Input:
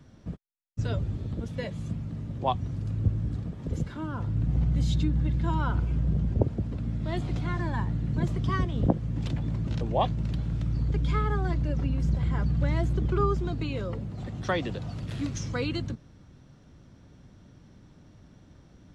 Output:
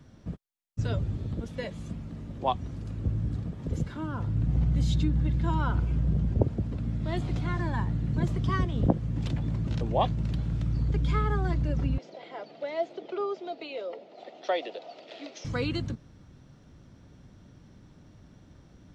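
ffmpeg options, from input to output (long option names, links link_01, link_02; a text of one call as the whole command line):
ffmpeg -i in.wav -filter_complex "[0:a]asettb=1/sr,asplit=3[link_01][link_02][link_03];[link_01]atrim=end=1.404[link_04];[link_02]atrim=start=1.4:end=3.09,asetpts=PTS-STARTPTS,afade=type=in:duration=0.004:curve=qsin,afade=type=out:start_time=1.686:duration=0.004:curve=qsin,equalizer=frequency=120:width=1.5:gain=-8[link_05];[link_03]atrim=start=3.086[link_06];[link_04][link_05]acrossfade=duration=0.004:curve1=hsin:curve2=qsin[link_07];[link_07][link_06]acrossfade=duration=0.004:curve1=qsin:curve2=hsin,asettb=1/sr,asplit=3[link_08][link_09][link_10];[link_08]atrim=end=11.984[link_11];[link_09]atrim=start=11.98:end=15.45,asetpts=PTS-STARTPTS,afade=type=in:duration=0.004:curve=qsin,afade=type=out:start_time=3.466:duration=0.004:curve=qsin,highpass=frequency=400:width=0.5412,highpass=frequency=400:width=1.3066,equalizer=frequency=660:width_type=q:width=4:gain=9,equalizer=frequency=1100:width_type=q:width=4:gain=-10,equalizer=frequency=1600:width_type=q:width=4:gain=-9,lowpass=frequency=5000:width=0.5412,lowpass=frequency=5000:width=1.3066[link_12];[link_10]atrim=start=15.446[link_13];[link_11][link_12]acrossfade=duration=0.004:curve1=hsin:curve2=qsin[link_14];[link_14][link_13]acrossfade=duration=0.004:curve1=qsin:curve2=hsin" out.wav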